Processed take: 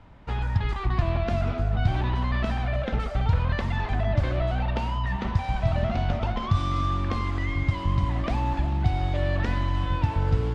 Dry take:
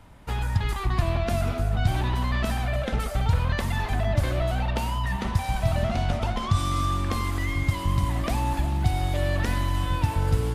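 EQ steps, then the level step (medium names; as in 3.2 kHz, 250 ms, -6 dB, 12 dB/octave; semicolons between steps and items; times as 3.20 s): distance through air 160 m; 0.0 dB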